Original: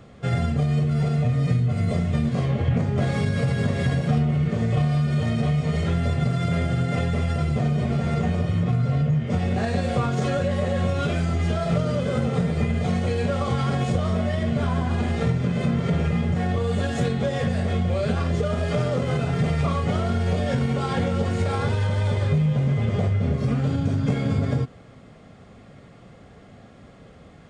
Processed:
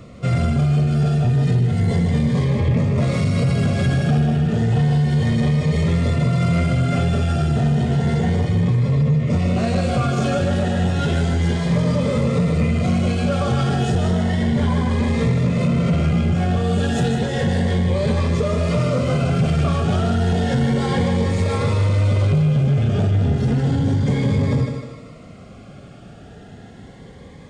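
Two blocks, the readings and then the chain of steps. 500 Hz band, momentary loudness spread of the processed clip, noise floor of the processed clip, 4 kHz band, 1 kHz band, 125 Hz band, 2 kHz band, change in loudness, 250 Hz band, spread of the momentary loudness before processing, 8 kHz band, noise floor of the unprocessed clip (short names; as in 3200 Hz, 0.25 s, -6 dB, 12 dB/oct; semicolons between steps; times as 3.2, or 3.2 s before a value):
+3.5 dB, 2 LU, -41 dBFS, +5.0 dB, +3.0 dB, +4.5 dB, +3.5 dB, +4.5 dB, +5.0 dB, 2 LU, +6.0 dB, -48 dBFS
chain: thinning echo 0.153 s, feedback 48%, high-pass 200 Hz, level -6.5 dB; soft clip -18.5 dBFS, distortion -15 dB; cascading phaser rising 0.32 Hz; gain +7 dB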